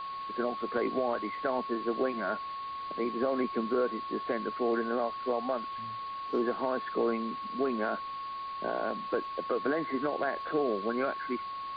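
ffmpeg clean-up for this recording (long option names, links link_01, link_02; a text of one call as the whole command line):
ffmpeg -i in.wav -af "adeclick=threshold=4,bandreject=frequency=1100:width=30,afwtdn=0.005" out.wav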